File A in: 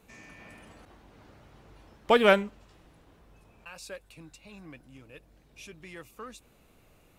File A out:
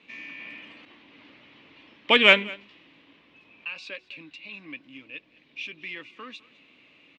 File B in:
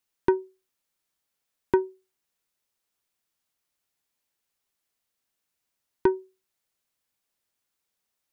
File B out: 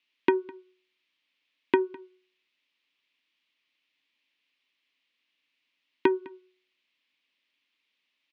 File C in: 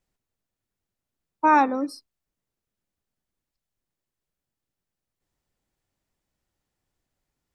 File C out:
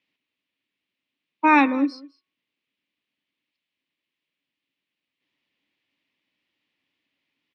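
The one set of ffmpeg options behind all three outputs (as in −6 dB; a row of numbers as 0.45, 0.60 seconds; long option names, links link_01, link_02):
-filter_complex "[0:a]highpass=210,equalizer=frequency=280:width_type=q:width=4:gain=9,equalizer=frequency=430:width_type=q:width=4:gain=-3,equalizer=frequency=750:width_type=q:width=4:gain=-6,equalizer=frequency=1100:width_type=q:width=4:gain=4,lowpass=frequency=2800:width=0.5412,lowpass=frequency=2800:width=1.3066,aexciter=amount=7.8:drive=6:freq=2100,bandreject=frequency=369.1:width_type=h:width=4,bandreject=frequency=738.2:width_type=h:width=4,bandreject=frequency=1107.3:width_type=h:width=4,bandreject=frequency=1476.4:width_type=h:width=4,asplit=2[link_01][link_02];[link_02]aecho=0:1:206:0.0794[link_03];[link_01][link_03]amix=inputs=2:normalize=0"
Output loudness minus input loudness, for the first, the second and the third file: +2.5, −1.0, +1.5 LU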